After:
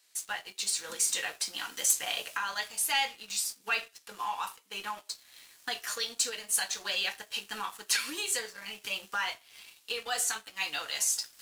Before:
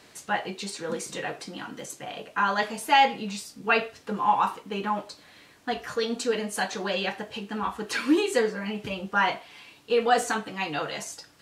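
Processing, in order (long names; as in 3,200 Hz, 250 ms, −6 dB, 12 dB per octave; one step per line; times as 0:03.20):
camcorder AGC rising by 12 dB per second
first difference
leveller curve on the samples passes 2
level −3 dB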